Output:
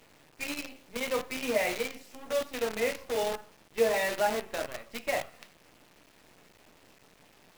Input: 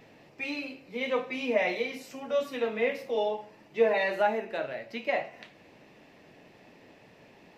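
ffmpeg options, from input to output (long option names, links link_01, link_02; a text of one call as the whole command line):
ffmpeg -i in.wav -af "acrusher=bits=6:dc=4:mix=0:aa=0.000001,volume=-2dB" out.wav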